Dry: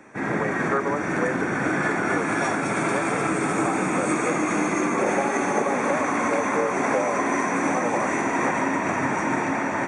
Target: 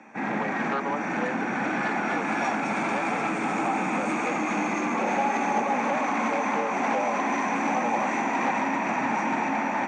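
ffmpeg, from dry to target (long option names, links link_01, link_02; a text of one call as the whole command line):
ffmpeg -i in.wav -af "asoftclip=type=tanh:threshold=-17.5dB,highpass=190,equalizer=frequency=220:width_type=q:width=4:gain=9,equalizer=frequency=400:width_type=q:width=4:gain=-5,equalizer=frequency=820:width_type=q:width=4:gain=9,equalizer=frequency=2500:width_type=q:width=4:gain=7,lowpass=frequency=6700:width=0.5412,lowpass=frequency=6700:width=1.3066,volume=-3.5dB" out.wav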